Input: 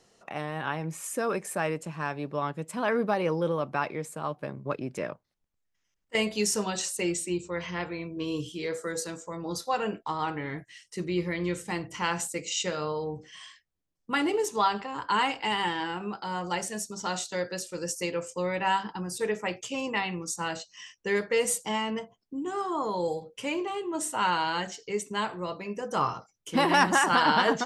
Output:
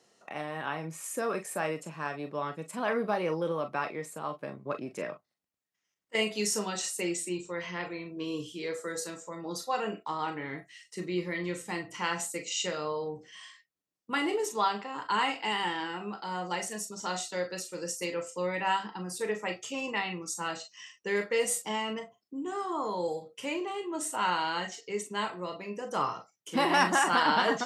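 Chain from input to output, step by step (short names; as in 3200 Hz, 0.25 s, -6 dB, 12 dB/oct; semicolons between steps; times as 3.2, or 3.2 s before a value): HPF 170 Hz 12 dB/oct; on a send: reverb, pre-delay 15 ms, DRR 6 dB; on the sum: gain -3 dB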